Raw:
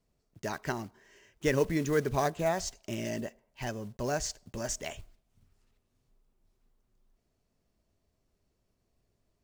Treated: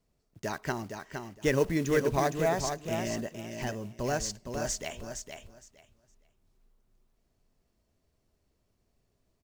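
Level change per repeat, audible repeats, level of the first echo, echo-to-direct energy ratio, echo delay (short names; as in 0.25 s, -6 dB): -15.0 dB, 2, -6.5 dB, -6.5 dB, 0.463 s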